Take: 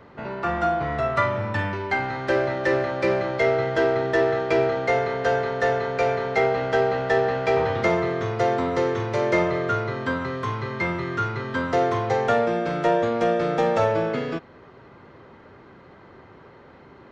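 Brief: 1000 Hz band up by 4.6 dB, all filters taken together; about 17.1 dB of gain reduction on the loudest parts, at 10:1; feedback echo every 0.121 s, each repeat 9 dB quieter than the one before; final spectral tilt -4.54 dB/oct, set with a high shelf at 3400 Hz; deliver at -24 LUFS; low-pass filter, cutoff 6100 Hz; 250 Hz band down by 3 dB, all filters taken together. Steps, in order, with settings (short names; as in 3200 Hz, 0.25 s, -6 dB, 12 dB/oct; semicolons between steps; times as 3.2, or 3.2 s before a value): LPF 6100 Hz; bell 250 Hz -5.5 dB; bell 1000 Hz +7.5 dB; high shelf 3400 Hz -3.5 dB; compressor 10:1, threshold -32 dBFS; feedback echo 0.121 s, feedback 35%, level -9 dB; gain +11 dB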